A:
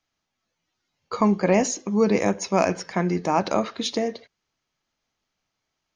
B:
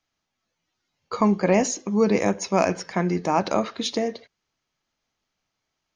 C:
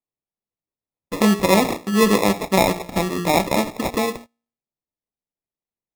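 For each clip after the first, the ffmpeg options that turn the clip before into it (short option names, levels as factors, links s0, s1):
-af anull
-af "bandreject=f=58.62:t=h:w=4,bandreject=f=117.24:t=h:w=4,bandreject=f=175.86:t=h:w=4,bandreject=f=234.48:t=h:w=4,bandreject=f=293.1:t=h:w=4,bandreject=f=351.72:t=h:w=4,bandreject=f=410.34:t=h:w=4,bandreject=f=468.96:t=h:w=4,bandreject=f=527.58:t=h:w=4,bandreject=f=586.2:t=h:w=4,bandreject=f=644.82:t=h:w=4,bandreject=f=703.44:t=h:w=4,bandreject=f=762.06:t=h:w=4,bandreject=f=820.68:t=h:w=4,acrusher=samples=29:mix=1:aa=0.000001,agate=range=0.0708:threshold=0.0112:ratio=16:detection=peak,volume=1.58"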